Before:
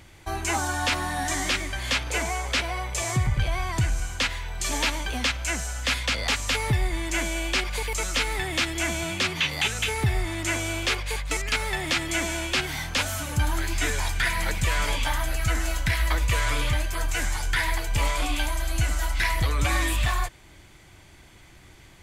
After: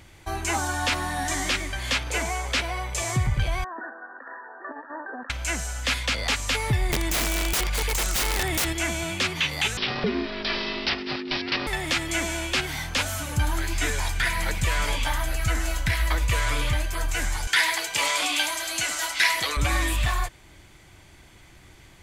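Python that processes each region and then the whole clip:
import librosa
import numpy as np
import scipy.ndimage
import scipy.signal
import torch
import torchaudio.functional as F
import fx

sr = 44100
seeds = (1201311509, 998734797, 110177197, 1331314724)

y = fx.chain(x, sr, fx.brickwall_bandpass(low_hz=220.0, high_hz=1900.0),
    fx.low_shelf(hz=350.0, db=-8.5),
    fx.over_compress(threshold_db=-36.0, ratio=-0.5), at=(3.64, 5.3))
y = fx.chain(y, sr, fx.low_shelf(hz=94.0, db=3.0),
    fx.overflow_wrap(gain_db=19.5),
    fx.env_flatten(amount_pct=50), at=(6.89, 8.73))
y = fx.chain(y, sr, fx.high_shelf(hz=5900.0, db=11.0),
    fx.ring_mod(carrier_hz=310.0),
    fx.resample_bad(factor=4, down='none', up='filtered'), at=(9.77, 11.67))
y = fx.chain(y, sr, fx.highpass(hz=320.0, slope=12),
    fx.peak_eq(hz=4800.0, db=8.5, octaves=2.9), at=(17.47, 19.57))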